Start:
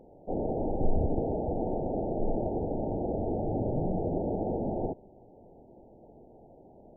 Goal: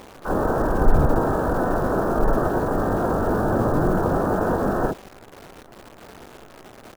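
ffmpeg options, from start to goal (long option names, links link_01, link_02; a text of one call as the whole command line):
ffmpeg -i in.wav -filter_complex "[0:a]asplit=4[link_01][link_02][link_03][link_04];[link_02]asetrate=35002,aresample=44100,atempo=1.25992,volume=-14dB[link_05];[link_03]asetrate=58866,aresample=44100,atempo=0.749154,volume=-14dB[link_06];[link_04]asetrate=88200,aresample=44100,atempo=0.5,volume=-3dB[link_07];[link_01][link_05][link_06][link_07]amix=inputs=4:normalize=0,acrusher=bits=9:dc=4:mix=0:aa=0.000001,volume=7.5dB" out.wav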